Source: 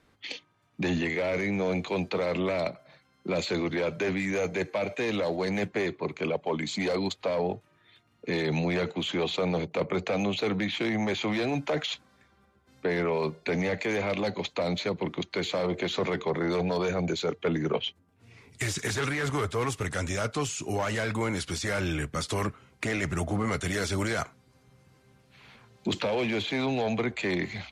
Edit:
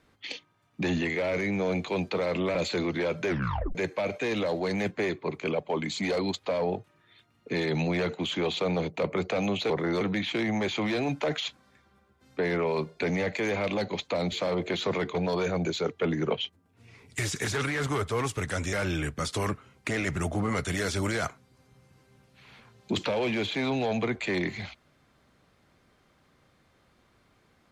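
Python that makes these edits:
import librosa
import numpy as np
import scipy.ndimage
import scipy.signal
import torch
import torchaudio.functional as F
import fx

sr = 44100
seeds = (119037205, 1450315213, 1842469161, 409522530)

y = fx.edit(x, sr, fx.cut(start_s=2.55, length_s=0.77),
    fx.tape_stop(start_s=4.04, length_s=0.48),
    fx.cut(start_s=14.78, length_s=0.66),
    fx.move(start_s=16.27, length_s=0.31, to_s=10.47),
    fx.cut(start_s=20.16, length_s=1.53), tone=tone)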